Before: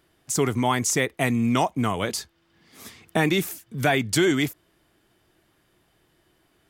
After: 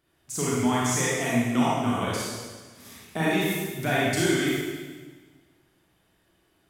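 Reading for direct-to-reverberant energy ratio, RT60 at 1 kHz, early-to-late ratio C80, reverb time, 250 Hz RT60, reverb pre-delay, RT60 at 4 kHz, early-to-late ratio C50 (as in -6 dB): -7.0 dB, 1.4 s, -0.5 dB, 1.4 s, 1.6 s, 29 ms, 1.4 s, -3.5 dB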